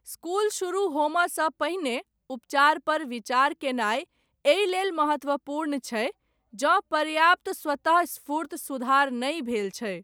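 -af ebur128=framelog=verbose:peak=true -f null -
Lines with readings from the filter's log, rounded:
Integrated loudness:
  I:         -25.7 LUFS
  Threshold: -35.9 LUFS
Loudness range:
  LRA:         1.7 LU
  Threshold: -45.7 LUFS
  LRA low:   -26.5 LUFS
  LRA high:  -24.8 LUFS
True peak:
  Peak:       -8.6 dBFS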